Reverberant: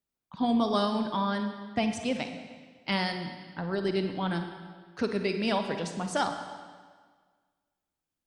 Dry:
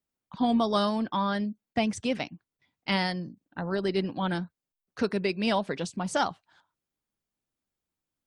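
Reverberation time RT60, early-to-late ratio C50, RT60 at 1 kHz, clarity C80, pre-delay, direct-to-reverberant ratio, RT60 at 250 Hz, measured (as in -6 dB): 1.6 s, 6.5 dB, 1.6 s, 8.5 dB, 34 ms, 6.0 dB, 1.6 s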